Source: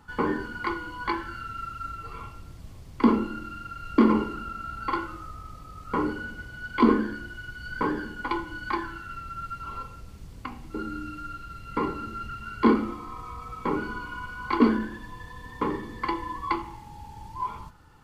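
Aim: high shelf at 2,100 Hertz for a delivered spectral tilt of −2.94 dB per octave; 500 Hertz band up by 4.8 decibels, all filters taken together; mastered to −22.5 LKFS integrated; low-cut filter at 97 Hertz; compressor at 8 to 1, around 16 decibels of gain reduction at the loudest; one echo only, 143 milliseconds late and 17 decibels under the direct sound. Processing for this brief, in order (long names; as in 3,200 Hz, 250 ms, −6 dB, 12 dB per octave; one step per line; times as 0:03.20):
high-pass filter 97 Hz
parametric band 500 Hz +6 dB
high-shelf EQ 2,100 Hz +8 dB
downward compressor 8 to 1, threshold −29 dBFS
single-tap delay 143 ms −17 dB
level +12.5 dB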